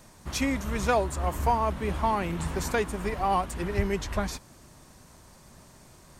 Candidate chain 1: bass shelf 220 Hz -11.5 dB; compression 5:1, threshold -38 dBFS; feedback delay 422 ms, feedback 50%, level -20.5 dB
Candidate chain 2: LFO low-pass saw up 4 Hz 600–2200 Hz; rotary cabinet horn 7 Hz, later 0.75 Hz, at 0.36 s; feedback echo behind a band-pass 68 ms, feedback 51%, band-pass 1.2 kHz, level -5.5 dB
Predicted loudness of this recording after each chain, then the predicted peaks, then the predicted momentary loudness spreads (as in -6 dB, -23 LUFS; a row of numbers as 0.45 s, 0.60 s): -41.0 LUFS, -27.0 LUFS; -26.5 dBFS, -8.5 dBFS; 15 LU, 10 LU